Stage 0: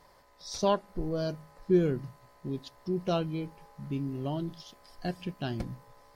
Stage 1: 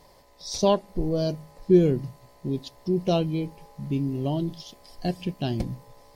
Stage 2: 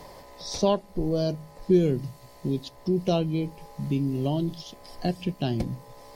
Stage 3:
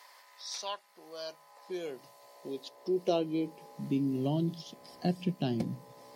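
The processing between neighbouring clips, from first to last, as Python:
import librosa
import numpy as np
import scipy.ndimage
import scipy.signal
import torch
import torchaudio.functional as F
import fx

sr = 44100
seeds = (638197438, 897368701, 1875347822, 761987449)

y1 = fx.peak_eq(x, sr, hz=1400.0, db=-12.0, octaves=0.81)
y1 = y1 * 10.0 ** (7.0 / 20.0)
y2 = fx.band_squash(y1, sr, depth_pct=40)
y3 = fx.filter_sweep_highpass(y2, sr, from_hz=1400.0, to_hz=170.0, start_s=0.84, end_s=4.33, q=1.4)
y3 = y3 * 10.0 ** (-5.5 / 20.0)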